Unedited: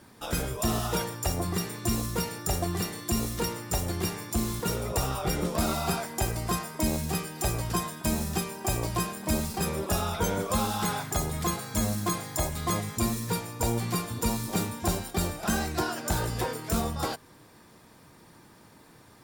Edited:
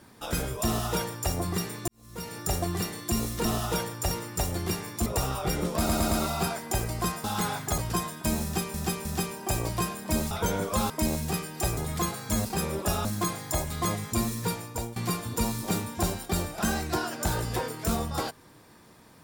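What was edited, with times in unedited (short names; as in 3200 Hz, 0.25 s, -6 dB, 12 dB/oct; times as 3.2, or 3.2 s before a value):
0.66–1.32 copy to 3.45
1.88–2.39 fade in quadratic
4.4–4.86 cut
5.58 stutter 0.11 s, 4 plays
6.71–7.58 swap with 10.68–11.22
8.23–8.54 loop, 3 plays
9.49–10.09 move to 11.9
13.46–13.81 fade out, to -17.5 dB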